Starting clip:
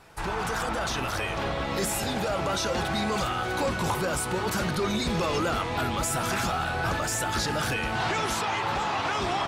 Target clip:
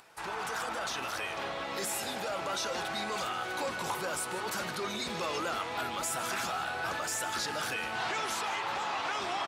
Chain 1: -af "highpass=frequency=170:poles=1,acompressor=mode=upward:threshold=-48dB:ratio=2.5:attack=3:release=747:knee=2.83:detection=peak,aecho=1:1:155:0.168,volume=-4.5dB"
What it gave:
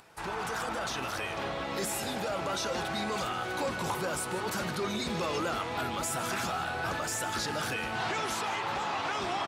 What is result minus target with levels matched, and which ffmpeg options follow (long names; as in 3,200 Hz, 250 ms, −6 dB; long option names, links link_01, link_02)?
125 Hz band +7.0 dB
-af "highpass=frequency=550:poles=1,acompressor=mode=upward:threshold=-48dB:ratio=2.5:attack=3:release=747:knee=2.83:detection=peak,aecho=1:1:155:0.168,volume=-4.5dB"